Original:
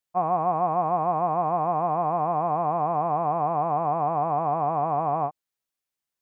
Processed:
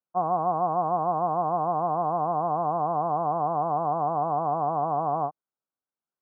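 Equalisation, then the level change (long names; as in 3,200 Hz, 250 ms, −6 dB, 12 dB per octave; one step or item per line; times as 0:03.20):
high-pass filter 140 Hz
linear-phase brick-wall low-pass 1,600 Hz
high-frequency loss of the air 340 metres
0.0 dB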